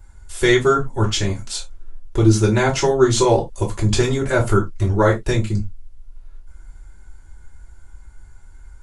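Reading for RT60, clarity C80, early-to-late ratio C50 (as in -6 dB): no single decay rate, 23.0 dB, 13.0 dB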